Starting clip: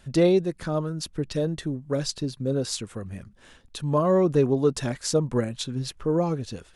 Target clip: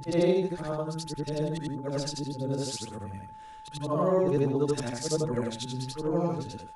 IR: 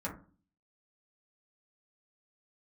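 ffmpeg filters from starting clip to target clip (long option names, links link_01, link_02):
-af "afftfilt=real='re':imag='-im':win_size=8192:overlap=0.75,aeval=exprs='val(0)+0.00631*sin(2*PI*870*n/s)':channel_layout=same"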